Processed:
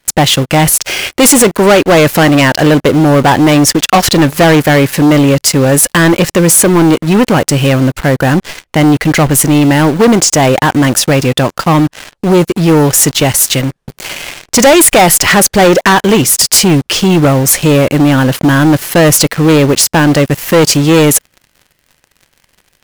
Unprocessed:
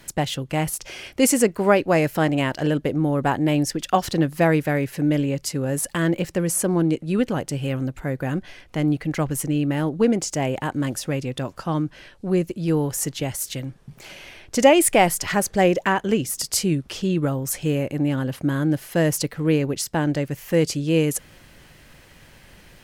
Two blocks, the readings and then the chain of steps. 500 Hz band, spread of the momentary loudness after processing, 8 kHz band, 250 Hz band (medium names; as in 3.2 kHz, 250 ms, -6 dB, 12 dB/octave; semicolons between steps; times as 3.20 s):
+13.0 dB, 5 LU, +17.5 dB, +13.5 dB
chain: bass shelf 460 Hz -5.5 dB; waveshaping leveller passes 5; in parallel at -6 dB: bit crusher 4-bit